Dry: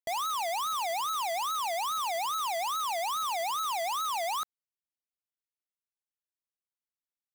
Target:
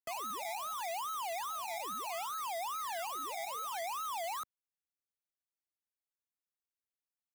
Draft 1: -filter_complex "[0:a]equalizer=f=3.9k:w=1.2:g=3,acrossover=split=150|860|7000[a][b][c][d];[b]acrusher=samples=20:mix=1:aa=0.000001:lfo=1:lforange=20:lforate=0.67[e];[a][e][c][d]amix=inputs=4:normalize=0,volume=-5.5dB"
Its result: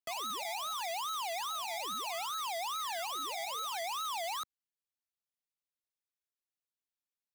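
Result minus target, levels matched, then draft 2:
4000 Hz band +5.5 dB
-filter_complex "[0:a]equalizer=f=3.9k:w=1.2:g=-8,acrossover=split=150|860|7000[a][b][c][d];[b]acrusher=samples=20:mix=1:aa=0.000001:lfo=1:lforange=20:lforate=0.67[e];[a][e][c][d]amix=inputs=4:normalize=0,volume=-5.5dB"

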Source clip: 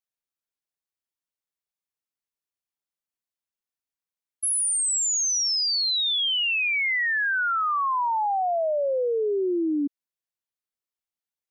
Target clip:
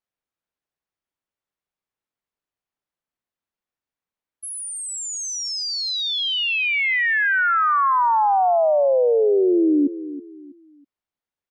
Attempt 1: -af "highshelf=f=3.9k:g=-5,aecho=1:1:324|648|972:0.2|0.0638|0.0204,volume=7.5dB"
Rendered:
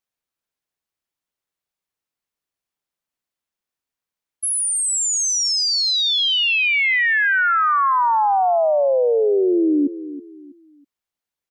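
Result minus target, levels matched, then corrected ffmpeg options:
8000 Hz band +6.5 dB
-af "highshelf=f=3.9k:g=-16.5,aecho=1:1:324|648|972:0.2|0.0638|0.0204,volume=7.5dB"

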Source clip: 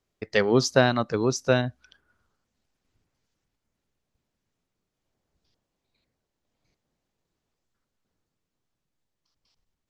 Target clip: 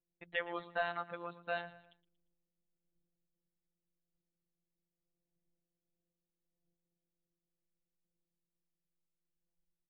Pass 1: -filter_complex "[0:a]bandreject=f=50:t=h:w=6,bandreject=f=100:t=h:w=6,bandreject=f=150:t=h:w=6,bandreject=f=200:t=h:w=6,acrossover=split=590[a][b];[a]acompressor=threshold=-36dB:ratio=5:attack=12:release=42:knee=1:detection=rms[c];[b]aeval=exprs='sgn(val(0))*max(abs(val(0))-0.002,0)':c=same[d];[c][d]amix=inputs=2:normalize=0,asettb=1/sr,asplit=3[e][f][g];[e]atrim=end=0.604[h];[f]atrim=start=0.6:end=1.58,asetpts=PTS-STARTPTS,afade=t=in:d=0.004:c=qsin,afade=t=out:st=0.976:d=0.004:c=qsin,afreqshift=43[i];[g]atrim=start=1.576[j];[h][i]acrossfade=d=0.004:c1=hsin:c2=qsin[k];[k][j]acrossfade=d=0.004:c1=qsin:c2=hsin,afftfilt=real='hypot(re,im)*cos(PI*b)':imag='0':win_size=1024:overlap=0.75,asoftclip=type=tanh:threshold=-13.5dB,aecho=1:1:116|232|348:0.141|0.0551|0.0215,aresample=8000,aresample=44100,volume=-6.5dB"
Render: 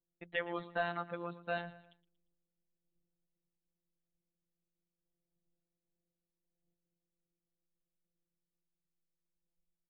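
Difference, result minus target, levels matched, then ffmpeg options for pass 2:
compressor: peak gain reduction -8 dB
-filter_complex "[0:a]bandreject=f=50:t=h:w=6,bandreject=f=100:t=h:w=6,bandreject=f=150:t=h:w=6,bandreject=f=200:t=h:w=6,acrossover=split=590[a][b];[a]acompressor=threshold=-46dB:ratio=5:attack=12:release=42:knee=1:detection=rms[c];[b]aeval=exprs='sgn(val(0))*max(abs(val(0))-0.002,0)':c=same[d];[c][d]amix=inputs=2:normalize=0,asettb=1/sr,asplit=3[e][f][g];[e]atrim=end=0.604[h];[f]atrim=start=0.6:end=1.58,asetpts=PTS-STARTPTS,afade=t=in:d=0.004:c=qsin,afade=t=out:st=0.976:d=0.004:c=qsin,afreqshift=43[i];[g]atrim=start=1.576[j];[h][i]acrossfade=d=0.004:c1=hsin:c2=qsin[k];[k][j]acrossfade=d=0.004:c1=qsin:c2=hsin,afftfilt=real='hypot(re,im)*cos(PI*b)':imag='0':win_size=1024:overlap=0.75,asoftclip=type=tanh:threshold=-13.5dB,aecho=1:1:116|232|348:0.141|0.0551|0.0215,aresample=8000,aresample=44100,volume=-6.5dB"

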